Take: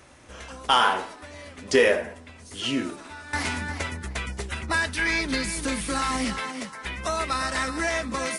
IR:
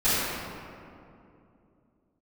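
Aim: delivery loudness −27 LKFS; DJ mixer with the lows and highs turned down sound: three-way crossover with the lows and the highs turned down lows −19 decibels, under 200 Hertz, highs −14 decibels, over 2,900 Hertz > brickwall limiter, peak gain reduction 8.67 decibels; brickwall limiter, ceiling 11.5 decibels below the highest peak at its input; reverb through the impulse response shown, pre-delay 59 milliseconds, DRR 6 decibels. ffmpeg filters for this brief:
-filter_complex "[0:a]alimiter=limit=-20dB:level=0:latency=1,asplit=2[link_01][link_02];[1:a]atrim=start_sample=2205,adelay=59[link_03];[link_02][link_03]afir=irnorm=-1:irlink=0,volume=-22.5dB[link_04];[link_01][link_04]amix=inputs=2:normalize=0,acrossover=split=200 2900:gain=0.112 1 0.2[link_05][link_06][link_07];[link_05][link_06][link_07]amix=inputs=3:normalize=0,volume=8.5dB,alimiter=limit=-18.5dB:level=0:latency=1"

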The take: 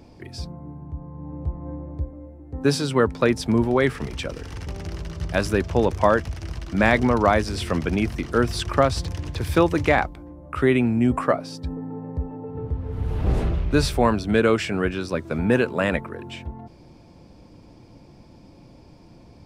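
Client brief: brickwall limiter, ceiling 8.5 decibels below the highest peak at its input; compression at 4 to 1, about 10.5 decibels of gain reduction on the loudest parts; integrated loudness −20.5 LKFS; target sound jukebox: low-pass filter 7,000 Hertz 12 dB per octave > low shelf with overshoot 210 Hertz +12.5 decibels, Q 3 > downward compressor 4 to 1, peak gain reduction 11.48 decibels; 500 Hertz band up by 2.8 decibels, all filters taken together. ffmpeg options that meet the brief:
ffmpeg -i in.wav -af "equalizer=frequency=500:width_type=o:gain=7,acompressor=threshold=-22dB:ratio=4,alimiter=limit=-16.5dB:level=0:latency=1,lowpass=7000,lowshelf=frequency=210:width_type=q:width=3:gain=12.5,acompressor=threshold=-20dB:ratio=4,volume=5dB" out.wav

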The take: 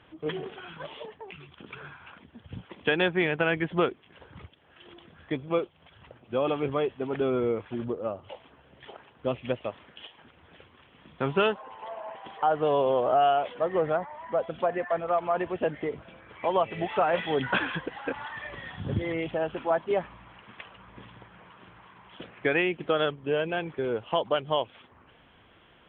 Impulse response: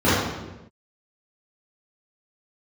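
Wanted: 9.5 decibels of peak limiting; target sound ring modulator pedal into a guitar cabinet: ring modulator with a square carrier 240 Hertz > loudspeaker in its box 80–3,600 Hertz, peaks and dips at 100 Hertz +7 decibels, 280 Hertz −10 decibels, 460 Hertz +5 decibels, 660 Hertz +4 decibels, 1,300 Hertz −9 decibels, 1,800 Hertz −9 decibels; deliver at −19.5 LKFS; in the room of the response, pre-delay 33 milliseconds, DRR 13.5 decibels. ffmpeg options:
-filter_complex "[0:a]alimiter=limit=-19.5dB:level=0:latency=1,asplit=2[link_01][link_02];[1:a]atrim=start_sample=2205,adelay=33[link_03];[link_02][link_03]afir=irnorm=-1:irlink=0,volume=-36.5dB[link_04];[link_01][link_04]amix=inputs=2:normalize=0,aeval=exprs='val(0)*sgn(sin(2*PI*240*n/s))':channel_layout=same,highpass=80,equalizer=frequency=100:width_type=q:width=4:gain=7,equalizer=frequency=280:width_type=q:width=4:gain=-10,equalizer=frequency=460:width_type=q:width=4:gain=5,equalizer=frequency=660:width_type=q:width=4:gain=4,equalizer=frequency=1300:width_type=q:width=4:gain=-9,equalizer=frequency=1800:width_type=q:width=4:gain=-9,lowpass=frequency=3600:width=0.5412,lowpass=frequency=3600:width=1.3066,volume=12dB"

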